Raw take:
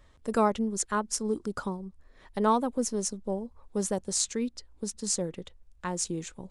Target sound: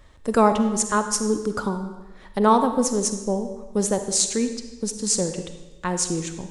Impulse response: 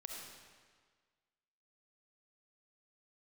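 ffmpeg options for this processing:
-filter_complex "[0:a]asplit=2[a][b];[1:a]atrim=start_sample=2205,asetrate=61740,aresample=44100[c];[b][c]afir=irnorm=-1:irlink=0,volume=4.5dB[d];[a][d]amix=inputs=2:normalize=0,volume=3dB"

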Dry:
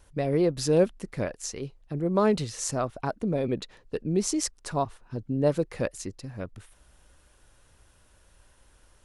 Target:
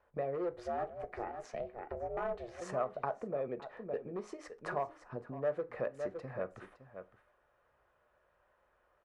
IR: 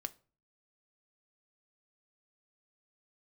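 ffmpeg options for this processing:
-filter_complex "[0:a]highpass=f=99:p=1,agate=range=-12dB:threshold=-58dB:ratio=16:detection=peak,aemphasis=mode=reproduction:type=75kf,asoftclip=type=hard:threshold=-20dB,aecho=1:1:562:0.158,acompressor=threshold=-39dB:ratio=6,asplit=3[a][b][c];[a]afade=t=out:st=0.51:d=0.02[d];[b]aeval=exprs='val(0)*sin(2*PI*230*n/s)':c=same,afade=t=in:st=0.51:d=0.02,afade=t=out:st=2.6:d=0.02[e];[c]afade=t=in:st=2.6:d=0.02[f];[d][e][f]amix=inputs=3:normalize=0,acrossover=split=420 2100:gain=0.178 1 0.112[g][h][i];[g][h][i]amix=inputs=3:normalize=0[j];[1:a]atrim=start_sample=2205,afade=t=out:st=0.17:d=0.01,atrim=end_sample=7938,asetrate=48510,aresample=44100[k];[j][k]afir=irnorm=-1:irlink=0,volume=12dB"

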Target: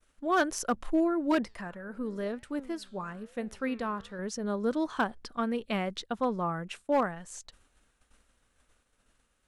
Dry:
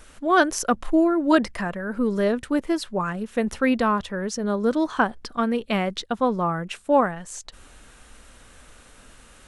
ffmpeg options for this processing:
-filter_complex "[0:a]agate=range=-33dB:threshold=-38dB:ratio=3:detection=peak,asettb=1/sr,asplit=3[a][b][c];[a]atrim=end=1.444[d];[b]atrim=start=1.44:end=4.19,asetpts=PTS-STARTPTS,afade=t=in:d=0.004:c=qsin,afade=t=out:st=2.746:d=0.004:c=qsin,flanger=delay=7.8:depth=8.9:regen=89:speed=1:shape=triangular[e];[c]atrim=start=4.186[f];[d][e]acrossfade=d=0.004:c1=hsin:c2=qsin[g];[g][f]acrossfade=d=0.004:c1=qsin:c2=hsin,volume=12dB,asoftclip=hard,volume=-12dB,volume=-7.5dB"

